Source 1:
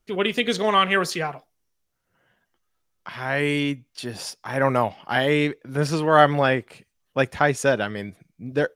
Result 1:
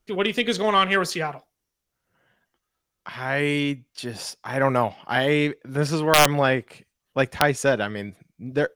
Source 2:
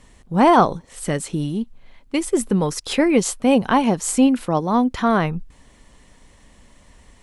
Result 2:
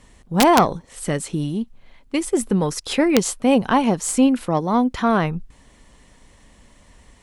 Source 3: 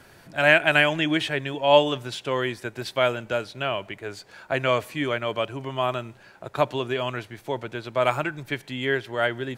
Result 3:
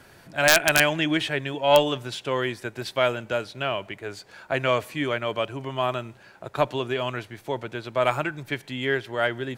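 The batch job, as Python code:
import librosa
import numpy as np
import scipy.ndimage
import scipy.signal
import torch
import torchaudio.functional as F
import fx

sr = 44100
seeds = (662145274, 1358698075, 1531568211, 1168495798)

y = fx.diode_clip(x, sr, knee_db=-3.0)
y = (np.mod(10.0 ** (4.5 / 20.0) * y + 1.0, 2.0) - 1.0) / 10.0 ** (4.5 / 20.0)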